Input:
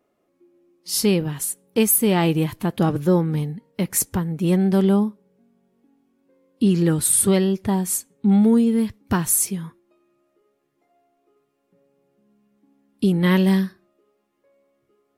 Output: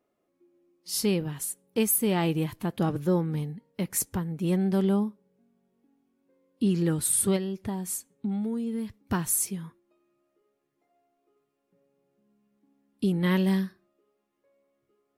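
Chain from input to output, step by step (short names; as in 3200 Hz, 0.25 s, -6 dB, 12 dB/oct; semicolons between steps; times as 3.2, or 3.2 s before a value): 7.36–9 compressor 5:1, threshold -21 dBFS, peak gain reduction 8.5 dB; gain -7 dB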